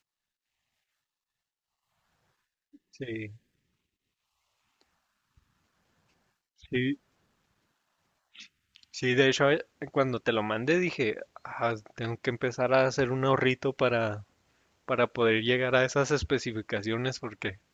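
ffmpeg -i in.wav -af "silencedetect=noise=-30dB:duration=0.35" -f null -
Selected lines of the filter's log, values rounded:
silence_start: 0.00
silence_end: 3.02 | silence_duration: 3.02
silence_start: 3.25
silence_end: 6.72 | silence_duration: 3.47
silence_start: 6.93
silence_end: 8.97 | silence_duration: 2.03
silence_start: 14.17
silence_end: 14.89 | silence_duration: 0.72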